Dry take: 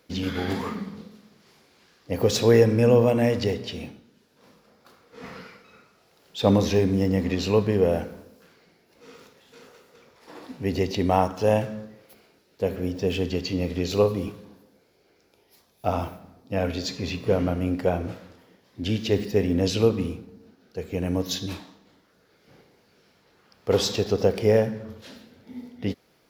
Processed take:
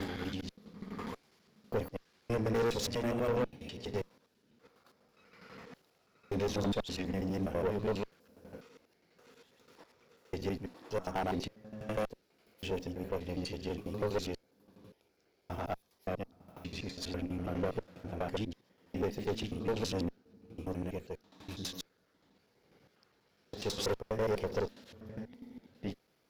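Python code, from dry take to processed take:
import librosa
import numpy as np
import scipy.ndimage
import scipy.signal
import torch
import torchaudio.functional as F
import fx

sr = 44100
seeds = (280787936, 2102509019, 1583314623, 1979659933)

y = fx.block_reorder(x, sr, ms=82.0, group=7)
y = fx.tube_stage(y, sr, drive_db=21.0, bias=0.75)
y = y * 10.0 ** (-6.0 / 20.0)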